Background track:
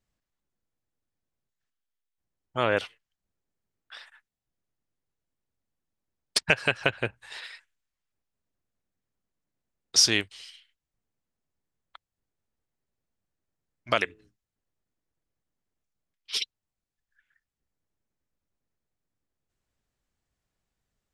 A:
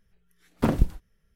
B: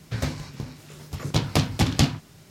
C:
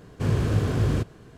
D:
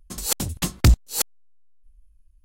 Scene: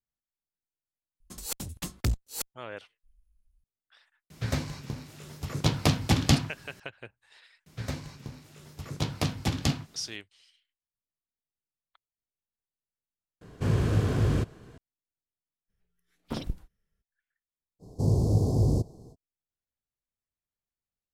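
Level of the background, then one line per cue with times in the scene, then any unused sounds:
background track -16 dB
1.20 s: add D -9.5 dB + single-diode clipper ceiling -16.5 dBFS
4.30 s: add B -2 dB
7.66 s: add B -7 dB
13.41 s: replace with C -2 dB
15.68 s: add A -12 dB, fades 0.02 s
17.79 s: add C -0.5 dB, fades 0.05 s + elliptic band-stop 830–4800 Hz, stop band 60 dB

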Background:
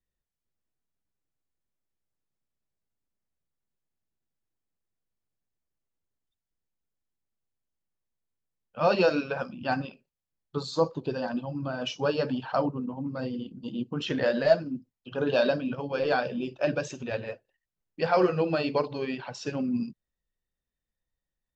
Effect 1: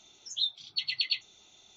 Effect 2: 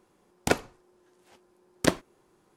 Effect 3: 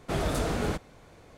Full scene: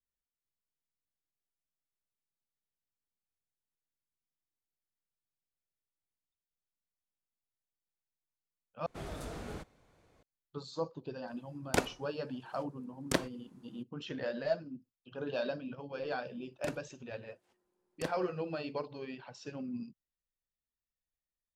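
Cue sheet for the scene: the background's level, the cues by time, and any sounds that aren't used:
background -11.5 dB
8.86 s: replace with 3 -14 dB
11.27 s: add 2 -4 dB + peak limiter -8.5 dBFS
16.17 s: add 2 -17.5 dB
not used: 1

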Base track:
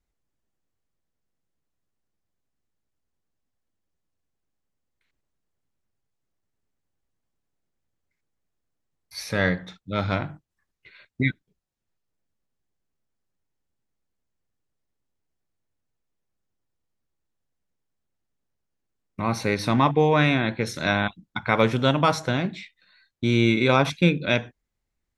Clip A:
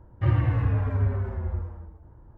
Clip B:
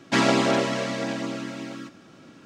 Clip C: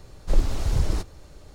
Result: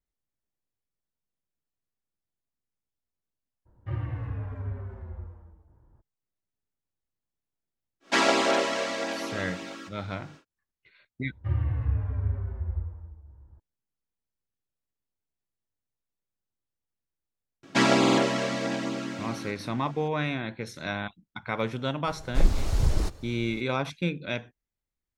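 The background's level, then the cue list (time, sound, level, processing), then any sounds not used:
base track -9.5 dB
3.65 s: add A -10 dB, fades 0.02 s
8.00 s: add B, fades 0.10 s + high-pass 390 Hz
11.23 s: add A -11.5 dB + peaking EQ 69 Hz +15 dB
17.63 s: add B -1 dB + buffer glitch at 0.36/1.88 s, samples 2048, times 3
22.07 s: add C -1 dB

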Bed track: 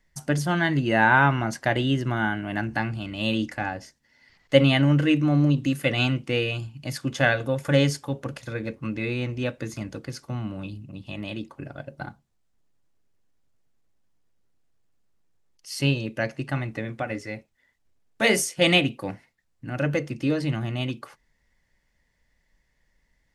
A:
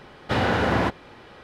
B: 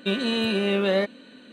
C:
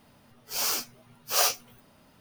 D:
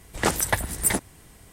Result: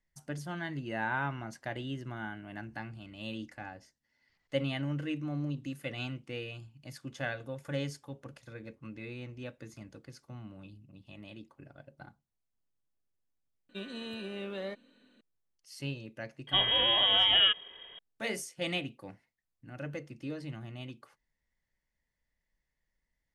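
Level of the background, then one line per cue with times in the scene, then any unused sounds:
bed track -15 dB
13.69 s: add B -16.5 dB
16.47 s: add B -2 dB + frequency inversion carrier 3.5 kHz
not used: A, C, D

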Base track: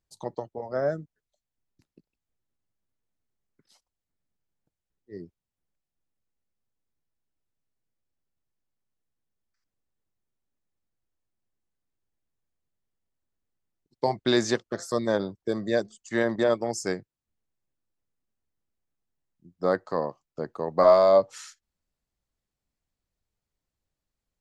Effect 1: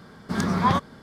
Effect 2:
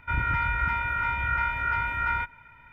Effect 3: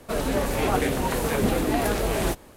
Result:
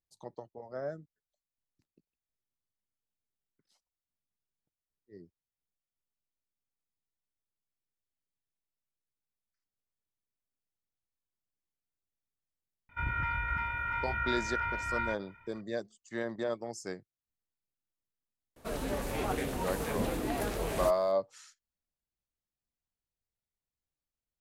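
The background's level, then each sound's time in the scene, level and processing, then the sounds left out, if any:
base track -11 dB
12.89 s: add 2 -7 dB
18.56 s: add 3 -10 dB
not used: 1

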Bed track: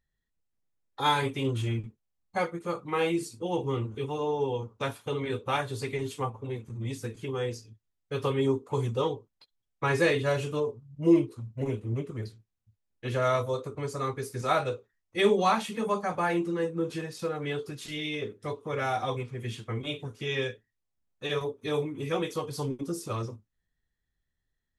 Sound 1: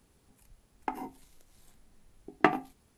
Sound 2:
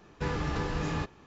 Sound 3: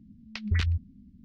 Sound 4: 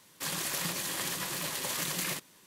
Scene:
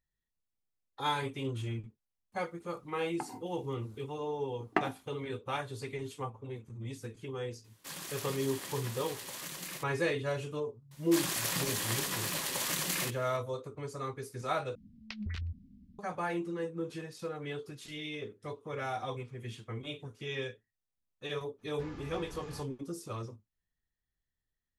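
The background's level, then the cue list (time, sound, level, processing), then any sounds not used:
bed track -7 dB
2.32 s: add 1 -6.5 dB + high-pass 87 Hz
7.64 s: add 4 -9 dB
10.91 s: add 4
14.75 s: replace with 3 -4.5 dB + compression, threshold -30 dBFS
21.58 s: add 2 -15.5 dB, fades 0.02 s

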